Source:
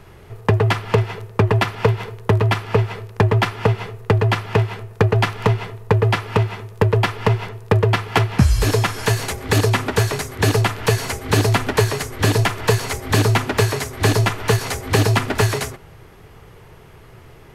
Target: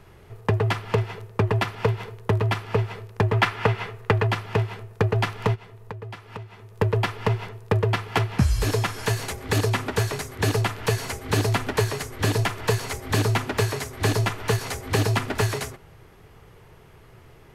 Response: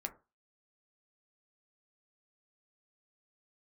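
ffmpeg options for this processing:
-filter_complex "[0:a]asettb=1/sr,asplit=3[link_01][link_02][link_03];[link_01]atrim=end=3.334[link_04];[link_02]atrim=start=3.33:end=4.27,asetpts=PTS-STARTPTS,afade=type=in:duration=0.004:curve=qsin,afade=type=out:start_time=0.936:duration=0.004:curve=qsin,equalizer=frequency=1800:width=0.53:gain=7[link_05];[link_03]atrim=start=4.266[link_06];[link_04][link_05]acrossfade=duration=0.004:curve1=hsin:curve2=qsin[link_07];[link_07][link_06]acrossfade=duration=0.004:curve1=qsin:curve2=hsin,asplit=3[link_08][link_09][link_10];[link_08]afade=type=out:start_time=5.54:duration=0.02[link_11];[link_09]acompressor=threshold=-33dB:ratio=3,afade=type=in:start_time=5.54:duration=0.02,afade=type=out:start_time=6.78:duration=0.02[link_12];[link_10]afade=type=in:start_time=6.78:duration=0.02[link_13];[link_11][link_12][link_13]amix=inputs=3:normalize=0,volume=-6dB"

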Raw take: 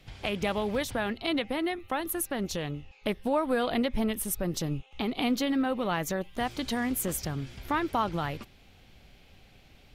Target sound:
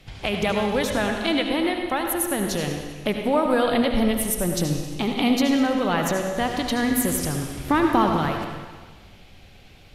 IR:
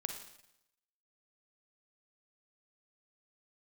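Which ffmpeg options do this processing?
-filter_complex "[0:a]asettb=1/sr,asplit=3[link_01][link_02][link_03];[link_01]atrim=end=7.584[link_04];[link_02]atrim=start=7.58:end=8.11,asetpts=PTS-STARTPTS,afade=type=in:duration=0.004:curve=qsin,afade=type=out:start_time=0.526:duration=0.004:curve=qsin,equalizer=frequency=260:width=0.89:gain=6.5[link_05];[link_03]atrim=start=8.106[link_06];[link_04][link_05]acrossfade=duration=0.004:curve1=hsin:curve2=qsin[link_07];[link_07][link_06]acrossfade=duration=0.004:curve1=qsin:curve2=hsin[link_08];[1:a]atrim=start_sample=2205,asetrate=25137,aresample=44100[link_09];[link_08][link_09]afir=irnorm=-1:irlink=0,volume=4dB"

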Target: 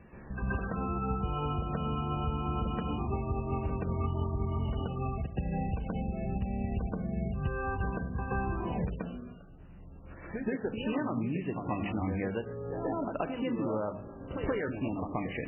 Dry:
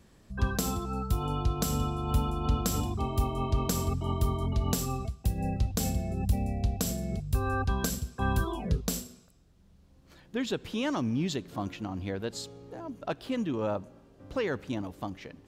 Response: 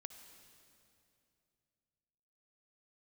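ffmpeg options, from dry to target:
-filter_complex "[0:a]bandreject=frequency=50:width_type=h:width=6,bandreject=frequency=100:width_type=h:width=6,bandreject=frequency=150:width_type=h:width=6,bandreject=frequency=200:width_type=h:width=6,bandreject=frequency=250:width_type=h:width=6,acompressor=threshold=-40dB:ratio=16,asplit=2[link_01][link_02];[1:a]atrim=start_sample=2205,afade=type=out:start_time=0.18:duration=0.01,atrim=end_sample=8379,adelay=128[link_03];[link_02][link_03]afir=irnorm=-1:irlink=0,volume=11.5dB[link_04];[link_01][link_04]amix=inputs=2:normalize=0,volume=5dB" -ar 12000 -c:a libmp3lame -b:a 8k

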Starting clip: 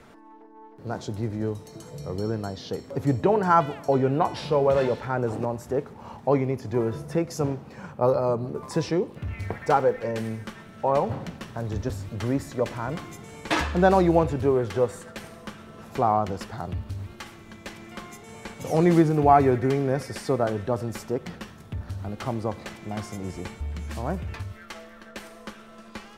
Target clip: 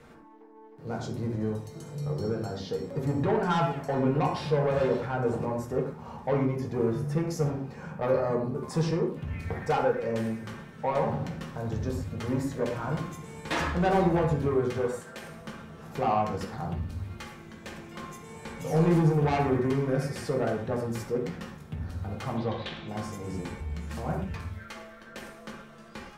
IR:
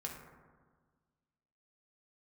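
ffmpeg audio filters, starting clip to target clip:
-filter_complex "[0:a]asettb=1/sr,asplit=3[link_01][link_02][link_03];[link_01]atrim=end=14.784[link_04];[link_02]atrim=start=14.78:end=15.26,asetpts=PTS-STARTPTS,afade=type=in:duration=0.004:curve=qsin,afade=type=out:start_time=0.476:duration=0.004:curve=qsin,lowshelf=frequency=150:gain=-10[link_05];[link_03]atrim=start=15.256[link_06];[link_04][link_05]acrossfade=duration=0.004:curve1=hsin:curve2=qsin[link_07];[link_07][link_06]acrossfade=duration=0.004:curve1=qsin:curve2=hsin,asettb=1/sr,asplit=3[link_08][link_09][link_10];[link_08]atrim=end=22.374[link_11];[link_09]atrim=start=22.37:end=22.88,asetpts=PTS-STARTPTS,afade=type=in:duration=0.004:curve=qsin,afade=type=out:start_time=0.506:duration=0.004:curve=qsin,lowpass=frequency=3600:width_type=q:width=5.2[link_12];[link_10]atrim=start=22.876[link_13];[link_11][link_12]acrossfade=duration=0.004:curve1=hsin:curve2=qsin[link_14];[link_14][link_13]acrossfade=duration=0.004:curve1=qsin:curve2=hsin,asoftclip=type=tanh:threshold=-18.5dB[link_15];[1:a]atrim=start_sample=2205,atrim=end_sample=6174[link_16];[link_15][link_16]afir=irnorm=-1:irlink=0"

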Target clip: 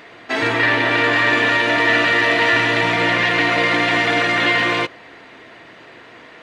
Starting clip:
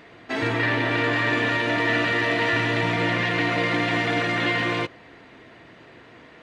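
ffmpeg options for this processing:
ffmpeg -i in.wav -af "lowshelf=frequency=290:gain=-10.5,volume=8dB" out.wav

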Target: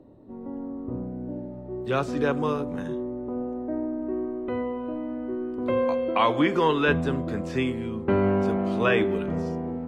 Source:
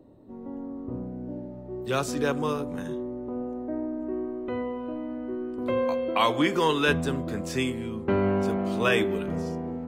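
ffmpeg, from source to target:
ffmpeg -i in.wav -filter_complex "[0:a]aemphasis=mode=reproduction:type=50kf,acrossover=split=3700[link_01][link_02];[link_02]acompressor=threshold=-50dB:ratio=4:attack=1:release=60[link_03];[link_01][link_03]amix=inputs=2:normalize=0,volume=2dB" out.wav

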